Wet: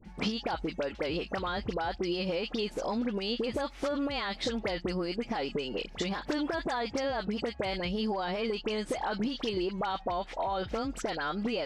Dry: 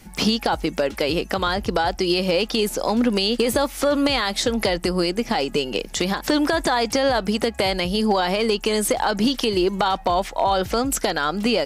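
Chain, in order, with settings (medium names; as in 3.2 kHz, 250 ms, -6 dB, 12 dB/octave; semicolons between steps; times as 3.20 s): low-pass 4.1 kHz 12 dB/octave; compression, threshold -21 dBFS, peak gain reduction 6.5 dB; phase dispersion highs, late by 50 ms, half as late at 1.5 kHz; trim -7 dB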